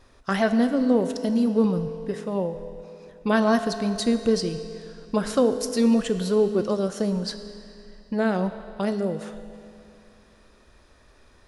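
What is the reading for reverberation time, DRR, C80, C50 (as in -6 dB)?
2.7 s, 8.5 dB, 10.5 dB, 10.0 dB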